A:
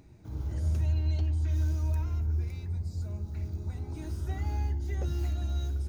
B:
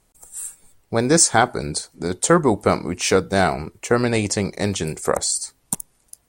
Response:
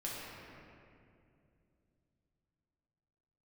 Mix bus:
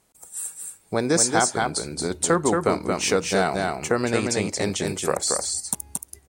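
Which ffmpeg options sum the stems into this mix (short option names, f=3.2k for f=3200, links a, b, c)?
-filter_complex "[0:a]adelay=1250,volume=-12.5dB[a];[1:a]volume=0dB,asplit=3[b][c][d];[c]volume=-4.5dB[e];[d]apad=whole_len=314652[f];[a][f]sidechaingate=range=-10dB:threshold=-46dB:ratio=16:detection=peak[g];[e]aecho=0:1:226:1[h];[g][b][h]amix=inputs=3:normalize=0,highpass=f=150:p=1,acompressor=threshold=-24dB:ratio=1.5"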